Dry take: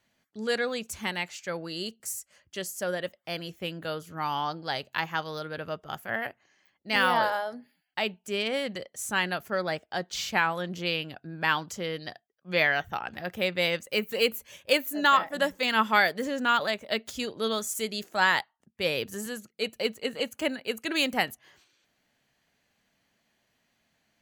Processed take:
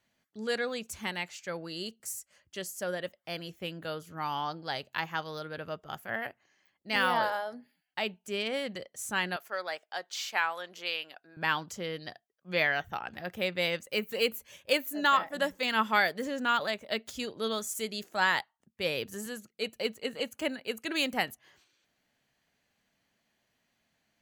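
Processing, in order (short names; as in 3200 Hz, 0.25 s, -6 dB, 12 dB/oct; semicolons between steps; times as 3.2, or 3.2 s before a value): 9.36–11.37 HPF 630 Hz 12 dB/oct; gain -3.5 dB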